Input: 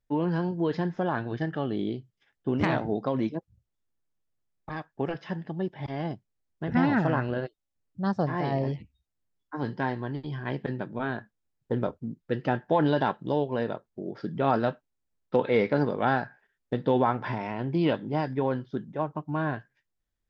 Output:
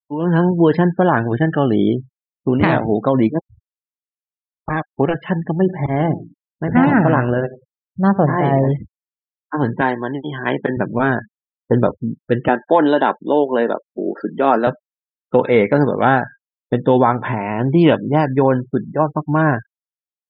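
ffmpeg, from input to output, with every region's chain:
ffmpeg -i in.wav -filter_complex "[0:a]asettb=1/sr,asplit=3[link_01][link_02][link_03];[link_01]atrim=end=5.544[link_04];[link_02]atrim=start=5.54:end=8.71,asetpts=PTS-STARTPTS,afade=type=in:duration=0.004:curve=qsin,afade=type=out:start_time=3.166:duration=0.004:curve=qsin,highshelf=frequency=4500:gain=-9.5,bandreject=frequency=57.3:width_type=h:width=4,bandreject=frequency=114.6:width_type=h:width=4,bandreject=frequency=171.9:width_type=h:width=4,bandreject=frequency=229.2:width_type=h:width=4,bandreject=frequency=286.5:width_type=h:width=4,bandreject=frequency=343.8:width_type=h:width=4,bandreject=frequency=401.1:width_type=h:width=4,aecho=1:1:91|182:0.126|0.0315,atrim=end_sample=139797[link_05];[link_03]atrim=start=8.706[link_06];[link_04][link_05]acrossfade=duration=0.004:curve1=hsin:curve2=qsin[link_07];[link_07][link_06]acrossfade=duration=0.004:curve1=qsin:curve2=hsin,asettb=1/sr,asplit=3[link_08][link_09][link_10];[link_08]atrim=end=9.814[link_11];[link_09]atrim=start=9.81:end=10.77,asetpts=PTS-STARTPTS,afade=type=in:duration=0.004:curve=qsin,afade=type=out:start_time=0.956:duration=0.004:curve=qsin,highpass=230,aemphasis=mode=production:type=cd[link_12];[link_10]atrim=start=10.766[link_13];[link_11][link_12]acrossfade=duration=0.004:curve1=hsin:curve2=qsin[link_14];[link_14][link_13]acrossfade=duration=0.004:curve1=qsin:curve2=hsin,asettb=1/sr,asplit=3[link_15][link_16][link_17];[link_15]atrim=end=12.484[link_18];[link_16]atrim=start=12.48:end=14.67,asetpts=PTS-STARTPTS,afade=type=in:duration=0.004:curve=qsin,afade=type=out:start_time=2.186:duration=0.004:curve=qsin,highpass=frequency=230:width=0.5412,highpass=frequency=230:width=1.3066,acompressor=mode=upward:threshold=-42dB:ratio=2.5:attack=3.2:release=140:knee=2.83:detection=peak[link_19];[link_17]atrim=start=14.666[link_20];[link_18][link_19]acrossfade=duration=0.004:curve1=hsin:curve2=qsin[link_21];[link_21][link_20]acrossfade=duration=0.004:curve1=qsin:curve2=hsin,lowpass=3600,afftfilt=real='re*gte(hypot(re,im),0.00562)':imag='im*gte(hypot(re,im),0.00562)':win_size=1024:overlap=0.75,dynaudnorm=framelen=190:gausssize=3:maxgain=15.5dB" out.wav

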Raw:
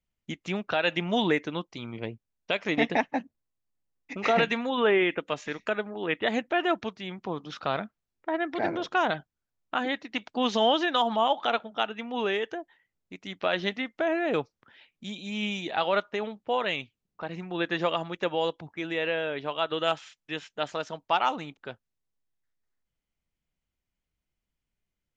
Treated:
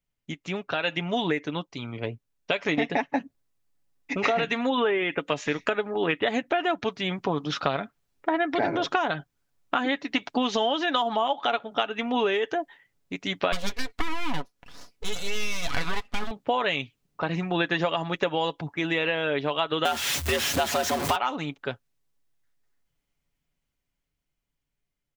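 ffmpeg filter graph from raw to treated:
ffmpeg -i in.wav -filter_complex "[0:a]asettb=1/sr,asplit=3[link_01][link_02][link_03];[link_01]atrim=end=13.524[link_04];[link_02]atrim=start=13.52:end=16.31,asetpts=PTS-STARTPTS,afade=type=in:duration=0.004:curve=qsin,afade=type=out:start_time=2.786:duration=0.004:curve=qsin,aeval=exprs='abs(val(0))':channel_layout=same,aecho=1:1:4.1:0.34,atrim=end_sample=123039[link_05];[link_03]atrim=start=16.306[link_06];[link_04][link_05]acrossfade=duration=0.004:curve1=hsin:curve2=qsin[link_07];[link_07][link_06]acrossfade=duration=0.004:curve1=qsin:curve2=hsin,asettb=1/sr,asplit=3[link_08][link_09][link_10];[link_08]atrim=end=19.854[link_11];[link_09]atrim=start=19.85:end=21.16,asetpts=PTS-STARTPTS,afade=type=in:duration=0.004:curve=qsin,afade=type=out:start_time=1.306:duration=0.004:curve=qsin,aeval=exprs='val(0)+0.5*0.0473*sgn(val(0))':channel_layout=same,afreqshift=76[link_12];[link_10]atrim=start=21.156[link_13];[link_11][link_12]acrossfade=duration=0.004:curve1=hsin:curve2=qsin[link_14];[link_14][link_13]acrossfade=duration=0.004:curve1=qsin:curve2=hsin,dynaudnorm=framelen=550:gausssize=9:maxgain=12.5dB,aecho=1:1:7.1:0.4,acompressor=threshold=-21dB:ratio=12" out.wav

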